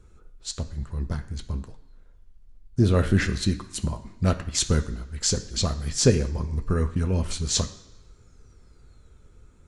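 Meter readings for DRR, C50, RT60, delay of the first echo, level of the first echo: 5.5 dB, 13.0 dB, 1.3 s, no echo audible, no echo audible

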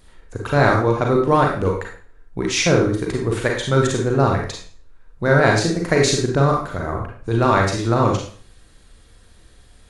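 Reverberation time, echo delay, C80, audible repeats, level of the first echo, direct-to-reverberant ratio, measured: 0.45 s, no echo audible, 8.5 dB, no echo audible, no echo audible, 0.0 dB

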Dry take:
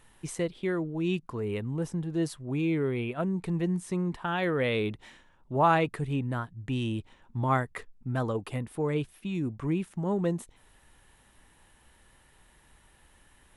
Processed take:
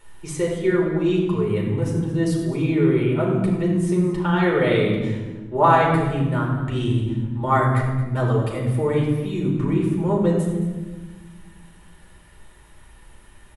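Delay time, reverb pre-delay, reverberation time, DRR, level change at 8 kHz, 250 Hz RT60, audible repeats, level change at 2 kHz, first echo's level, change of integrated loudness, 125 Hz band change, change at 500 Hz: 222 ms, 5 ms, 1.3 s, −3.5 dB, can't be measured, 2.2 s, 1, +7.5 dB, −13.0 dB, +9.5 dB, +11.0 dB, +10.0 dB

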